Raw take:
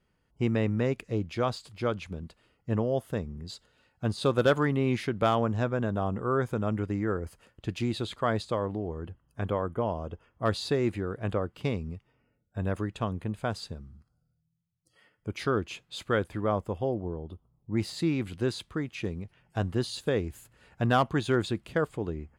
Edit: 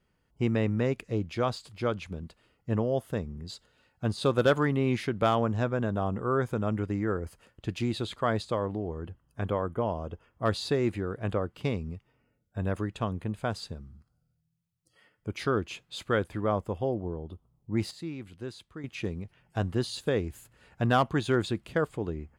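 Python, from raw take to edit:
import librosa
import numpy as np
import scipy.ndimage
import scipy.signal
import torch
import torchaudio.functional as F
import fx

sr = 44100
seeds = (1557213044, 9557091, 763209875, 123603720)

y = fx.edit(x, sr, fx.clip_gain(start_s=17.91, length_s=0.93, db=-10.0), tone=tone)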